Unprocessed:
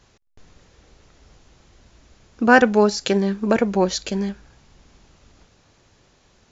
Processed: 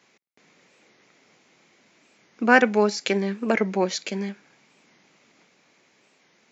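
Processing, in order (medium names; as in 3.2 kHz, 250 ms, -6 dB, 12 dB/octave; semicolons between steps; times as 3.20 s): high-pass 180 Hz 24 dB/octave; peaking EQ 2.2 kHz +10.5 dB 0.42 oct; warped record 45 rpm, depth 160 cents; trim -4 dB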